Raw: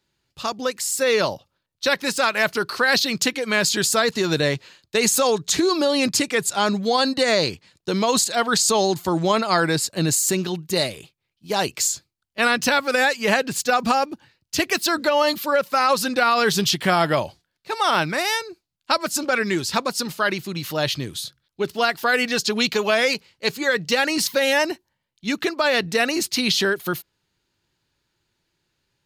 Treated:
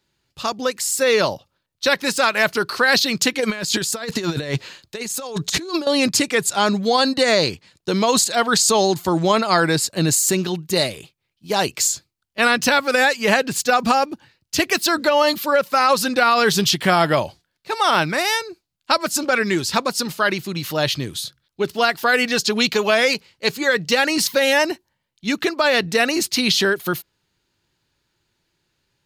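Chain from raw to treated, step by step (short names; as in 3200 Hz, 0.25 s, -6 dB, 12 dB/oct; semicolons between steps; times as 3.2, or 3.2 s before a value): 3.39–5.87 negative-ratio compressor -25 dBFS, ratio -0.5; gain +2.5 dB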